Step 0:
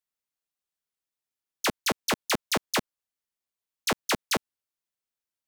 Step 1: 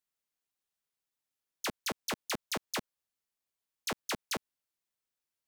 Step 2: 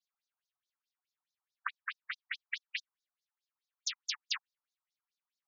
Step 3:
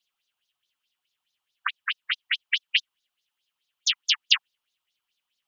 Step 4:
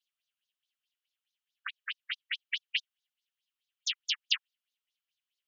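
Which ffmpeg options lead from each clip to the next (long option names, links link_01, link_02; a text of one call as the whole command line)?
ffmpeg -i in.wav -af "alimiter=level_in=4dB:limit=-24dB:level=0:latency=1,volume=-4dB" out.wav
ffmpeg -i in.wav -af "afftfilt=real='hypot(re,im)*cos(2*PI*random(0))':imag='hypot(re,im)*sin(2*PI*random(1))':win_size=512:overlap=0.75,afftfilt=real='re*between(b*sr/1024,930*pow(5100/930,0.5+0.5*sin(2*PI*4.7*pts/sr))/1.41,930*pow(5100/930,0.5+0.5*sin(2*PI*4.7*pts/sr))*1.41)':imag='im*between(b*sr/1024,930*pow(5100/930,0.5+0.5*sin(2*PI*4.7*pts/sr))/1.41,930*pow(5100/930,0.5+0.5*sin(2*PI*4.7*pts/sr))*1.41)':win_size=1024:overlap=0.75,volume=10.5dB" out.wav
ffmpeg -i in.wav -af "equalizer=frequency=3000:width=2.4:gain=14.5,volume=7.5dB" out.wav
ffmpeg -i in.wav -af "highpass=frequency=1400:width=0.5412,highpass=frequency=1400:width=1.3066,volume=-9dB" out.wav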